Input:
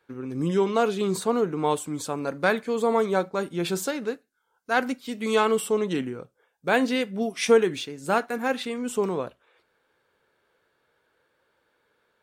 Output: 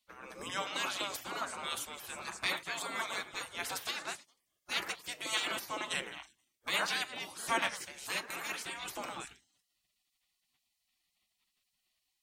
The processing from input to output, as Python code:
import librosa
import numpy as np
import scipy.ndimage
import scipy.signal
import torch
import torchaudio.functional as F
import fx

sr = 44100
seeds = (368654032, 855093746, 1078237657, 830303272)

y = fx.echo_stepped(x, sr, ms=107, hz=1000.0, octaves=1.4, feedback_pct=70, wet_db=-8)
y = fx.spec_gate(y, sr, threshold_db=-20, keep='weak')
y = F.gain(torch.from_numpy(y), 2.5).numpy()